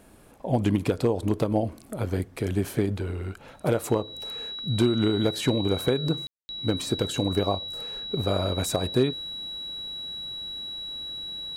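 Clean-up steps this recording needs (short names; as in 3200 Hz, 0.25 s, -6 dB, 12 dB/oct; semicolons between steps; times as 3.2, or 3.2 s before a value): clip repair -12 dBFS; notch 3900 Hz, Q 30; room tone fill 6.27–6.49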